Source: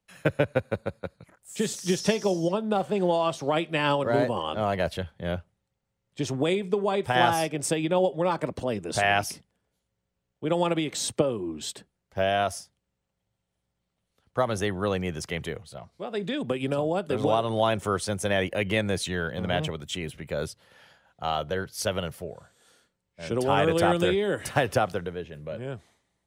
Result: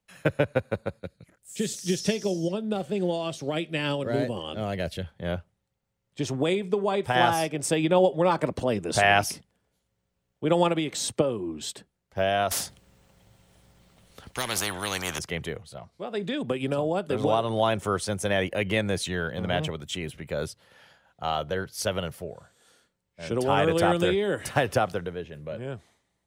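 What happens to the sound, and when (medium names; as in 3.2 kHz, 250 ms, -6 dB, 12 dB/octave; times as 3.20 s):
1.00–5.04 s: peaking EQ 990 Hz -11.5 dB 1.2 oct
7.73–10.68 s: gain +3 dB
12.51–15.19 s: spectrum-flattening compressor 4:1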